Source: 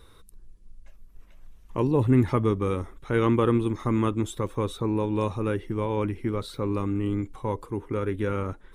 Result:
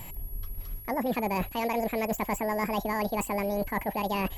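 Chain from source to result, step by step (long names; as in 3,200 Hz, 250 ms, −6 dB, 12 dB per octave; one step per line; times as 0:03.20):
notch filter 2,100 Hz, Q 14
reversed playback
downward compressor 10 to 1, threshold −35 dBFS, peak gain reduction 19.5 dB
reversed playback
steady tone 5,700 Hz −53 dBFS
wrong playback speed 7.5 ips tape played at 15 ips
level +9 dB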